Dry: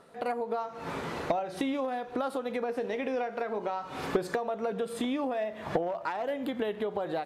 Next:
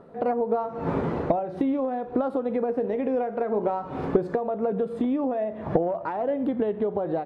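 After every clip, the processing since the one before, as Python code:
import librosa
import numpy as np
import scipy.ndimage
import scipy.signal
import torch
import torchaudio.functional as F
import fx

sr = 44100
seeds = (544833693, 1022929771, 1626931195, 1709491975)

y = fx.lowpass(x, sr, hz=2900.0, slope=6)
y = fx.tilt_shelf(y, sr, db=9.5, hz=1200.0)
y = fx.rider(y, sr, range_db=10, speed_s=0.5)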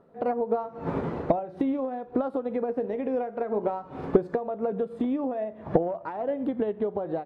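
y = fx.upward_expand(x, sr, threshold_db=-38.0, expansion=1.5)
y = y * 10.0 ** (1.5 / 20.0)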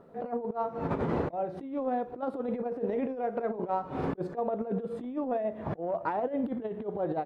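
y = fx.over_compress(x, sr, threshold_db=-31.0, ratio=-0.5)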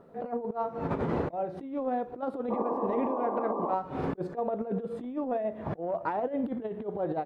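y = fx.spec_paint(x, sr, seeds[0], shape='noise', start_s=2.5, length_s=1.25, low_hz=210.0, high_hz=1200.0, level_db=-33.0)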